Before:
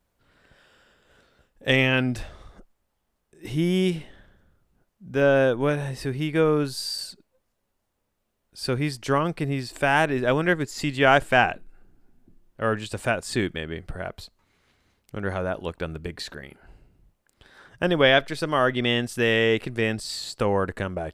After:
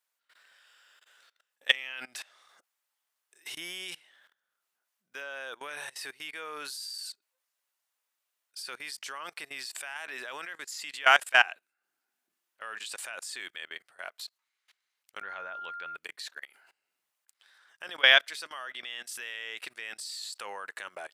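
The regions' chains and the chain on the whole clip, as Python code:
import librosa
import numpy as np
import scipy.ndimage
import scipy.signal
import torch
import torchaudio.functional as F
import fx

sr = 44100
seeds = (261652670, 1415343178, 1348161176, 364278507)

y = fx.lowpass(x, sr, hz=3600.0, slope=12, at=(15.21, 15.95), fade=0.02)
y = fx.low_shelf(y, sr, hz=160.0, db=11.5, at=(15.21, 15.95), fade=0.02)
y = fx.dmg_tone(y, sr, hz=1400.0, level_db=-32.0, at=(15.21, 15.95), fade=0.02)
y = scipy.signal.sosfilt(scipy.signal.butter(2, 1300.0, 'highpass', fs=sr, output='sos'), y)
y = fx.high_shelf(y, sr, hz=4700.0, db=4.0)
y = fx.level_steps(y, sr, step_db=22)
y = y * 10.0 ** (4.0 / 20.0)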